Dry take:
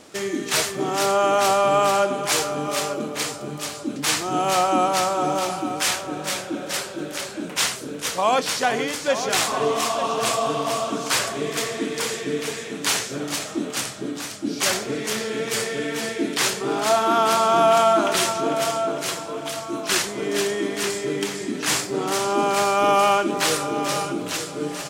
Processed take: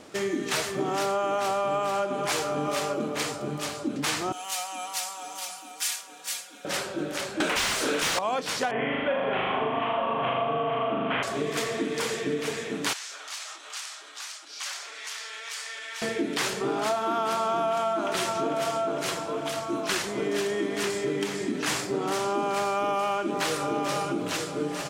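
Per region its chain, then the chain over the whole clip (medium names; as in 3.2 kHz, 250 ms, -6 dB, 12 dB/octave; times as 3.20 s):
4.32–6.65 s: differentiator + comb 4.2 ms, depth 80%
7.40–8.19 s: tilt EQ +3 dB/octave + overdrive pedal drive 30 dB, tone 2.6 kHz, clips at -2 dBFS
8.71–11.23 s: Chebyshev low-pass 3.2 kHz, order 6 + flutter echo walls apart 6.7 m, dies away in 1.2 s
12.93–16.02 s: peaking EQ 5.5 kHz +9.5 dB 2.4 oct + compression 3:1, threshold -25 dBFS + ladder high-pass 760 Hz, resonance 25%
whole clip: treble shelf 4 kHz -6.5 dB; compression, threshold -24 dBFS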